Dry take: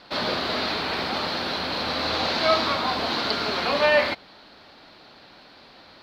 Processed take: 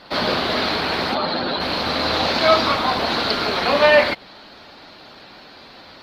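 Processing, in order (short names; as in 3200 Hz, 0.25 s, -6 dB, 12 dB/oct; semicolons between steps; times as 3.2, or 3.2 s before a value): 1.14–1.61 spectral contrast raised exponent 1.8; 3.26–3.75 dynamic EQ 110 Hz, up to -4 dB, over -58 dBFS, Q 5.4; gain +6.5 dB; Opus 24 kbps 48000 Hz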